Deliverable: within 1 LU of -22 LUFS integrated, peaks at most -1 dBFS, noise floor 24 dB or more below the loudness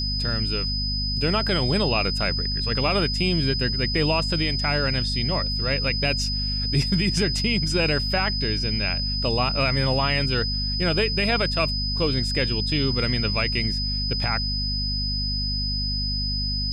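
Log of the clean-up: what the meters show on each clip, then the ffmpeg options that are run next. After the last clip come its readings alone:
hum 50 Hz; highest harmonic 250 Hz; hum level -26 dBFS; steady tone 5 kHz; tone level -26 dBFS; loudness -22.5 LUFS; peak level -10.0 dBFS; loudness target -22.0 LUFS
-> -af "bandreject=f=50:t=h:w=4,bandreject=f=100:t=h:w=4,bandreject=f=150:t=h:w=4,bandreject=f=200:t=h:w=4,bandreject=f=250:t=h:w=4"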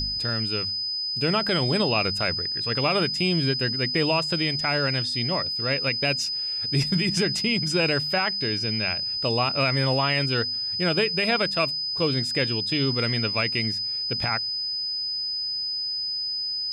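hum not found; steady tone 5 kHz; tone level -26 dBFS
-> -af "bandreject=f=5000:w=30"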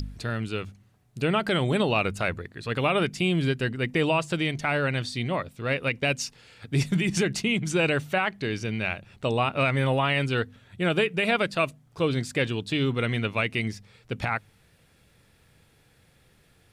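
steady tone not found; loudness -26.5 LUFS; peak level -12.0 dBFS; loudness target -22.0 LUFS
-> -af "volume=1.68"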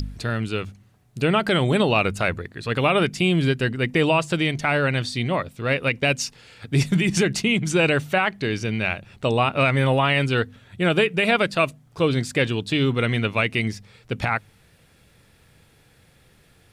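loudness -22.0 LUFS; peak level -7.5 dBFS; noise floor -57 dBFS

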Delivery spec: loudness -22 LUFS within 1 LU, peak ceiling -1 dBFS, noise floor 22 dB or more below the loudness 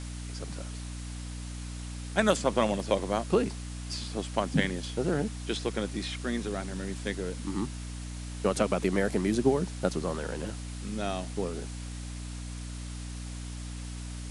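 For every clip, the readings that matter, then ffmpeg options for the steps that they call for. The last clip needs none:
hum 60 Hz; highest harmonic 300 Hz; hum level -36 dBFS; noise floor -39 dBFS; noise floor target -54 dBFS; loudness -32.0 LUFS; peak level -8.0 dBFS; loudness target -22.0 LUFS
-> -af "bandreject=f=60:t=h:w=4,bandreject=f=120:t=h:w=4,bandreject=f=180:t=h:w=4,bandreject=f=240:t=h:w=4,bandreject=f=300:t=h:w=4"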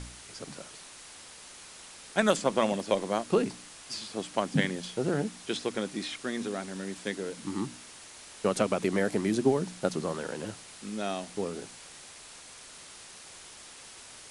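hum not found; noise floor -49 dBFS; noise floor target -53 dBFS
-> -af "afftdn=nr=6:nf=-49"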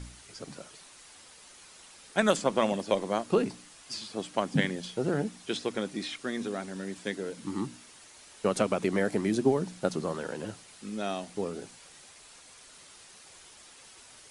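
noise floor -53 dBFS; loudness -31.0 LUFS; peak level -8.5 dBFS; loudness target -22.0 LUFS
-> -af "volume=2.82,alimiter=limit=0.891:level=0:latency=1"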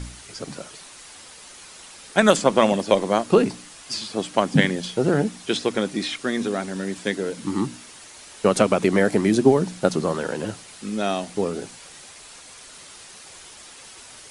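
loudness -22.0 LUFS; peak level -1.0 dBFS; noise floor -44 dBFS

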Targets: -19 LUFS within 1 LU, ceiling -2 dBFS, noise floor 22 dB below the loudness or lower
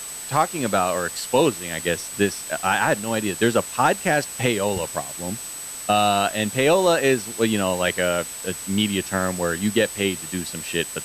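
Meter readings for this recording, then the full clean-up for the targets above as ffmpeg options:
steady tone 8 kHz; tone level -33 dBFS; noise floor -34 dBFS; noise floor target -44 dBFS; loudness -22.0 LUFS; peak level -6.5 dBFS; loudness target -19.0 LUFS
-> -af "bandreject=f=8000:w=30"
-af "afftdn=nr=10:nf=-34"
-af "volume=1.41"

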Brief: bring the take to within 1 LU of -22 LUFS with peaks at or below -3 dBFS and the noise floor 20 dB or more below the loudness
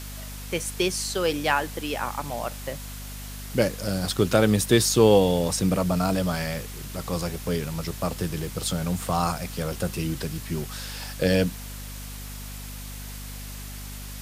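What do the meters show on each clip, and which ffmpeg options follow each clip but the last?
hum 50 Hz; highest harmonic 250 Hz; hum level -36 dBFS; noise floor -37 dBFS; noise floor target -46 dBFS; loudness -25.5 LUFS; peak level -4.5 dBFS; loudness target -22.0 LUFS
-> -af "bandreject=f=50:t=h:w=4,bandreject=f=100:t=h:w=4,bandreject=f=150:t=h:w=4,bandreject=f=200:t=h:w=4,bandreject=f=250:t=h:w=4"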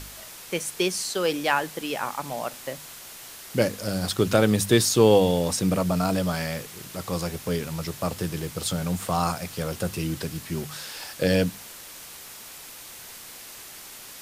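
hum not found; noise floor -43 dBFS; noise floor target -46 dBFS
-> -af "afftdn=nr=6:nf=-43"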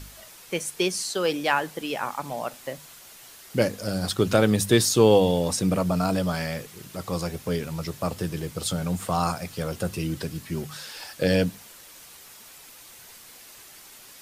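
noise floor -48 dBFS; loudness -25.5 LUFS; peak level -5.0 dBFS; loudness target -22.0 LUFS
-> -af "volume=1.5,alimiter=limit=0.708:level=0:latency=1"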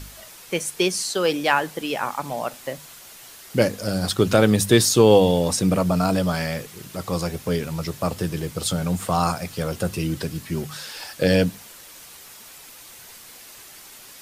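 loudness -22.0 LUFS; peak level -3.0 dBFS; noise floor -44 dBFS

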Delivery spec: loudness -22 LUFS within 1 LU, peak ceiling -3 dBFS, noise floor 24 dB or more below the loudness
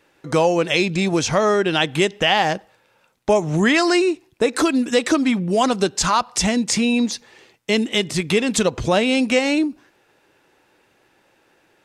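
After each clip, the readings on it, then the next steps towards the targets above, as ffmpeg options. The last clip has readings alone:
loudness -19.0 LUFS; peak level -4.0 dBFS; loudness target -22.0 LUFS
-> -af "volume=0.708"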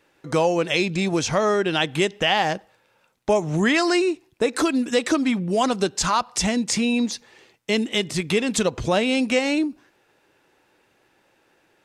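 loudness -22.0 LUFS; peak level -7.0 dBFS; noise floor -64 dBFS

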